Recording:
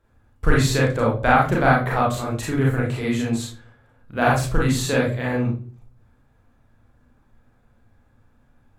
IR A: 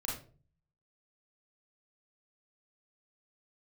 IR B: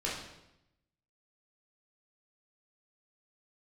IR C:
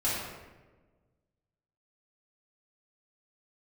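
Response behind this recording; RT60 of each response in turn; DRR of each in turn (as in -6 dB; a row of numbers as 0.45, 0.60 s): A; 0.40, 0.85, 1.3 s; -4.5, -6.0, -10.0 dB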